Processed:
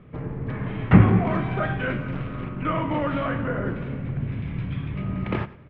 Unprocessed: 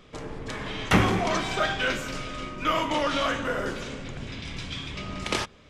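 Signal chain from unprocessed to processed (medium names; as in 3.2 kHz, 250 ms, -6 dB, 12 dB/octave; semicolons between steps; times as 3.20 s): low-pass 2.3 kHz 24 dB/octave; peaking EQ 130 Hz +15 dB 2 oct; on a send: feedback delay 99 ms, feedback 31%, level -17.5 dB; 2.12–2.63 s: on the sum: loudspeaker Doppler distortion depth 0.36 ms; trim -2.5 dB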